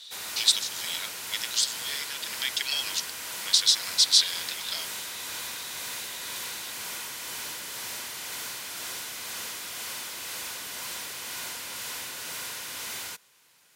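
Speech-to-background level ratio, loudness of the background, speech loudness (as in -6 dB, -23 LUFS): 8.5 dB, -34.0 LUFS, -25.5 LUFS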